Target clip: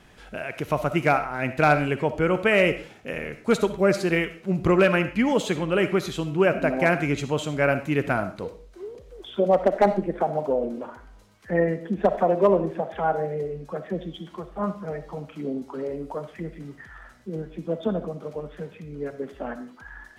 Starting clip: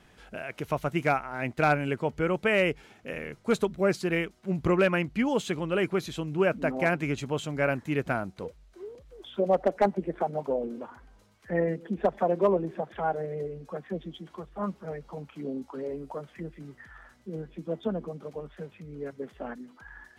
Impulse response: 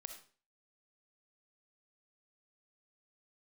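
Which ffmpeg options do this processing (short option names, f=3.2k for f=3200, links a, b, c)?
-filter_complex "[0:a]asplit=2[a][b];[1:a]atrim=start_sample=2205[c];[b][c]afir=irnorm=-1:irlink=0,volume=10dB[d];[a][d]amix=inputs=2:normalize=0,volume=-4dB"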